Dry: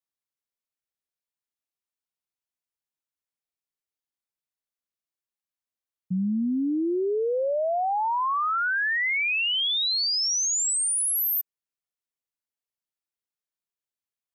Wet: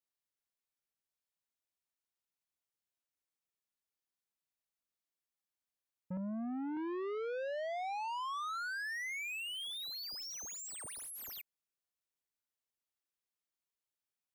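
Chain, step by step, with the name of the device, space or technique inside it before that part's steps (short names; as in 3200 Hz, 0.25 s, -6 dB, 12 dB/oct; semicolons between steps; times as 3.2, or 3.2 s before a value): 6.17–6.77 low shelf 160 Hz -10.5 dB; saturation between pre-emphasis and de-emphasis (high shelf 4000 Hz +10 dB; soft clip -35 dBFS, distortion -5 dB; high shelf 4000 Hz -10 dB); gain -2.5 dB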